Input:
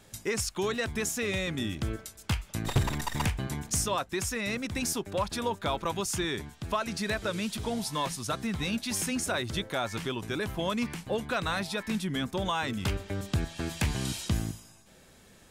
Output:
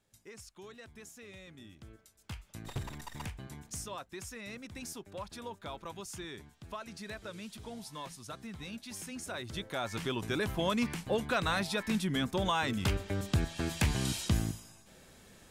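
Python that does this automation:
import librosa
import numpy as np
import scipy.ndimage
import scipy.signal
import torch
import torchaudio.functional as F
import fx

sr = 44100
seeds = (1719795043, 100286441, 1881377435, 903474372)

y = fx.gain(x, sr, db=fx.line((1.94, -20.0), (2.42, -12.5), (9.09, -12.5), (10.19, -0.5)))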